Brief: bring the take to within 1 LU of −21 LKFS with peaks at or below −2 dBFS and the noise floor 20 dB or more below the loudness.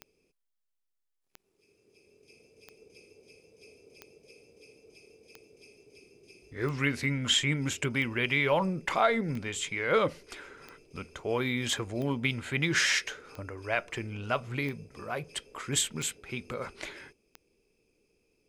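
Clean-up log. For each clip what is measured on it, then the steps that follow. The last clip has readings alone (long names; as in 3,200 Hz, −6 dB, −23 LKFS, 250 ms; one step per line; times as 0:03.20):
number of clicks 14; integrated loudness −30.0 LKFS; sample peak −12.5 dBFS; target loudness −21.0 LKFS
→ click removal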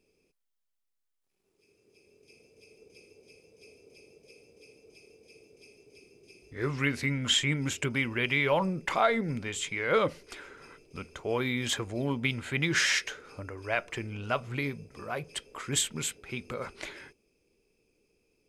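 number of clicks 0; integrated loudness −30.0 LKFS; sample peak −12.5 dBFS; target loudness −21.0 LKFS
→ level +9 dB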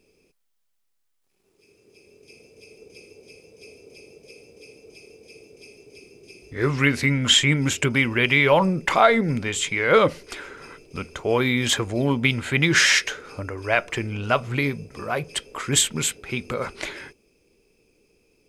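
integrated loudness −21.0 LKFS; sample peak −3.5 dBFS; background noise floor −71 dBFS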